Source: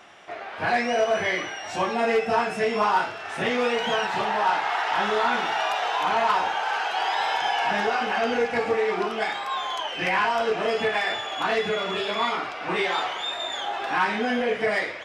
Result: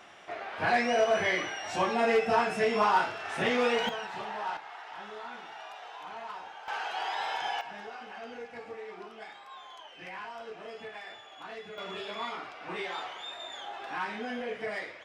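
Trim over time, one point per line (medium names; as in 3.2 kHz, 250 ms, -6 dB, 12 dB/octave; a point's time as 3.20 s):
-3 dB
from 3.89 s -12.5 dB
from 4.57 s -19.5 dB
from 6.68 s -8.5 dB
from 7.61 s -19 dB
from 11.78 s -11.5 dB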